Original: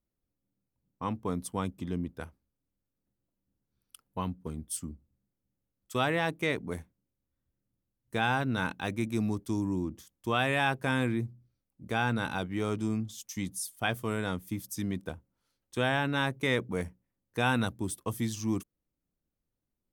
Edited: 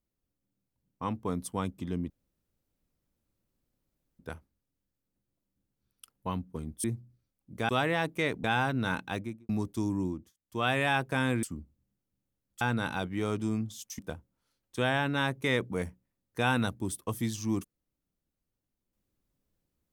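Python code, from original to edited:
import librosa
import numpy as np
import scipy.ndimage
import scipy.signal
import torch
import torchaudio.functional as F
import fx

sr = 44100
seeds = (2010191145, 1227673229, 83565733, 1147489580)

y = fx.studio_fade_out(x, sr, start_s=8.8, length_s=0.41)
y = fx.edit(y, sr, fx.insert_room_tone(at_s=2.1, length_s=2.09),
    fx.swap(start_s=4.75, length_s=1.18, other_s=11.15, other_length_s=0.85),
    fx.cut(start_s=6.68, length_s=1.48),
    fx.fade_down_up(start_s=9.77, length_s=0.62, db=-20.5, fade_s=0.28),
    fx.cut(start_s=13.38, length_s=1.6), tone=tone)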